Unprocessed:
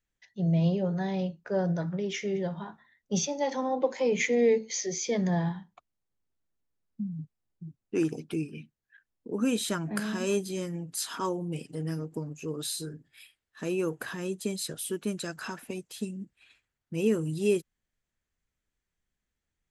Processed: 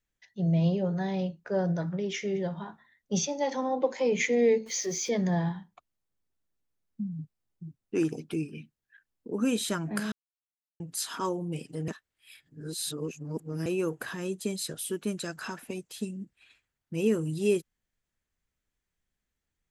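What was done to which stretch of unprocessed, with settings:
0:04.66–0:05.09: converter with a step at zero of −45.5 dBFS
0:10.12–0:10.80: silence
0:11.88–0:13.66: reverse

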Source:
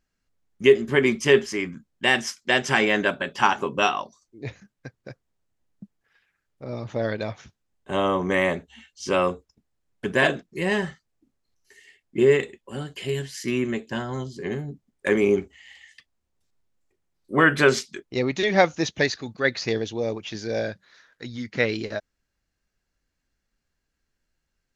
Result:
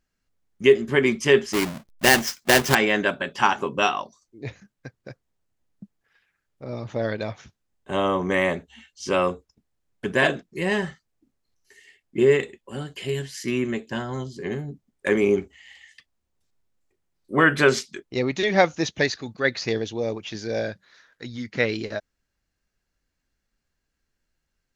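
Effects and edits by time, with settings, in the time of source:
0:01.53–0:02.75: each half-wave held at its own peak

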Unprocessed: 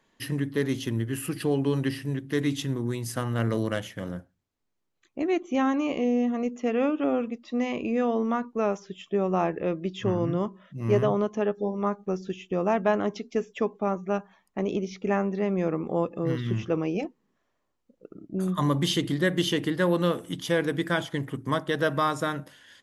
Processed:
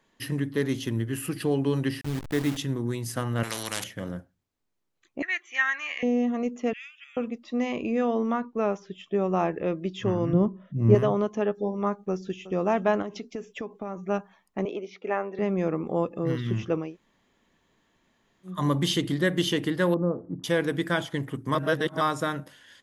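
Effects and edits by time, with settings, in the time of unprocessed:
0:02.01–0:02.57: hold until the input has moved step −31.5 dBFS
0:03.43–0:03.84: every bin compressed towards the loudest bin 4 to 1
0:05.22–0:06.03: high-pass with resonance 1,800 Hz, resonance Q 8
0:06.73–0:07.17: elliptic high-pass filter 2,000 Hz, stop band 70 dB
0:08.33–0:09.12: high-frequency loss of the air 75 metres
0:10.33–0:10.95: tilt shelving filter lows +9 dB, about 690 Hz
0:12.09–0:12.52: delay throw 360 ms, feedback 35%, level −15.5 dB
0:13.02–0:14.08: downward compressor 12 to 1, threshold −29 dBFS
0:14.65–0:15.39: three-way crossover with the lows and the highs turned down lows −22 dB, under 330 Hz, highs −14 dB, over 3,600 Hz
0:16.85–0:18.55: fill with room tone, crossfade 0.24 s
0:19.94–0:20.44: Gaussian smoothing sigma 9.4 samples
0:21.55–0:22.01: reverse

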